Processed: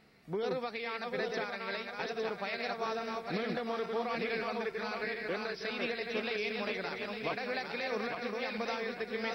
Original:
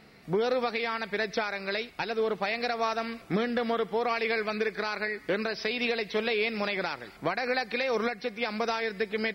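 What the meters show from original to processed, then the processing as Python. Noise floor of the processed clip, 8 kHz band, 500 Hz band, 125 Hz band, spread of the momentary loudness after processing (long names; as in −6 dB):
−46 dBFS, can't be measured, −6.5 dB, −6.0 dB, 3 LU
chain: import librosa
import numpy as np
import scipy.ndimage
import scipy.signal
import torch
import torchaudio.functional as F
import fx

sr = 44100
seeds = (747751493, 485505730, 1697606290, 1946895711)

y = fx.reverse_delay_fb(x, sr, ms=429, feedback_pct=61, wet_db=-3.0)
y = F.gain(torch.from_numpy(y), -8.5).numpy()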